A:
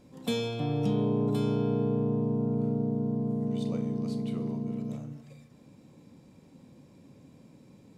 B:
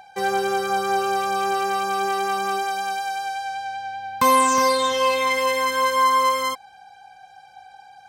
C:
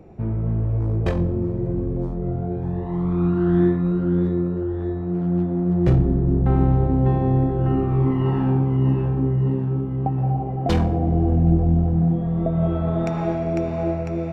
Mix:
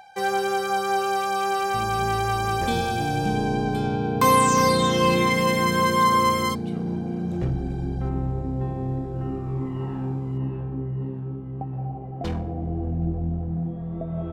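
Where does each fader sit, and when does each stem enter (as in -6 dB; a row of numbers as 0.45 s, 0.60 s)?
+1.5 dB, -1.5 dB, -9.0 dB; 2.40 s, 0.00 s, 1.55 s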